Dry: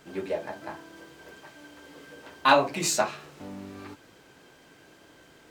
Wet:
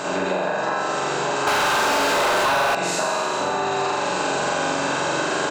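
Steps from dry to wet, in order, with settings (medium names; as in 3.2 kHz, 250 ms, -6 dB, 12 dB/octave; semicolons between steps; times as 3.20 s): spectral levelling over time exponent 0.4; recorder AGC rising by 9.1 dB/s; spectral gate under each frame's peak -25 dB strong; doubling 22 ms -11 dB; flutter echo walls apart 7.4 m, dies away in 1.4 s; 1.47–2.75 s: overdrive pedal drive 34 dB, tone 4.4 kHz, clips at -5 dBFS; bass shelf 67 Hz -6 dB; compression 4:1, threshold -22 dBFS, peak gain reduction 11.5 dB; peaking EQ 780 Hz +2 dB 2.3 oct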